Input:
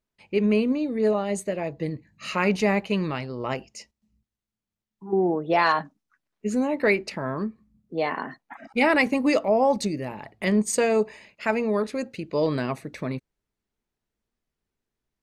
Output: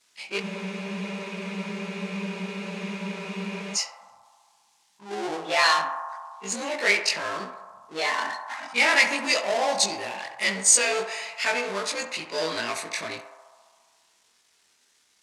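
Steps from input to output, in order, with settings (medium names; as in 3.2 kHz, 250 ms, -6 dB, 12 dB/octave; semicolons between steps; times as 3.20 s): short-time spectra conjugated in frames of 50 ms; power-law waveshaper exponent 0.7; frequency weighting ITU-R 468; band-passed feedback delay 68 ms, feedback 82%, band-pass 900 Hz, level -8 dB; spectral freeze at 0.44 s, 3.32 s; trim -1.5 dB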